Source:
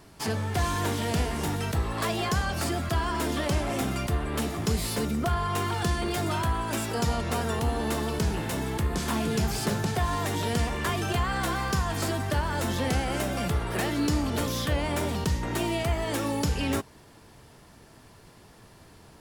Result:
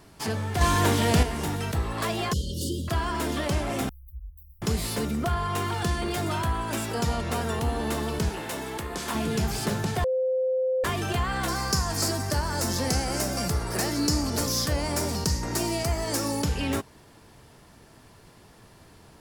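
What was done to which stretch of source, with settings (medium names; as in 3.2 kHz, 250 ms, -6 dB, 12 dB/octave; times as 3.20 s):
0.61–1.23 s: gain +6 dB
2.33–2.88 s: brick-wall FIR band-stop 570–2800 Hz
3.89–4.62 s: inverse Chebyshev band-stop 160–7400 Hz, stop band 60 dB
8.29–9.15 s: tone controls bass -11 dB, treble 0 dB
10.04–10.84 s: bleep 517 Hz -22 dBFS
11.48–16.42 s: resonant high shelf 4.1 kHz +6 dB, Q 3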